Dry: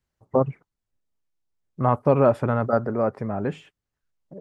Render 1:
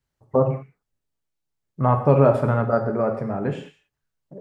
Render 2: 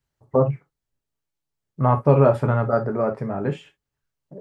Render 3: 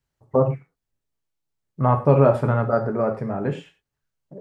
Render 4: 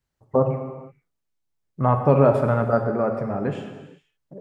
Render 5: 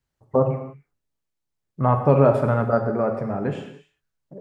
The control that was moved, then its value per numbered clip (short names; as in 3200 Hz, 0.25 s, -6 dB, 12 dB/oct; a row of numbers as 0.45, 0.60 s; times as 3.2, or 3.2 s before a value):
non-linear reverb, gate: 220, 90, 140, 500, 330 ms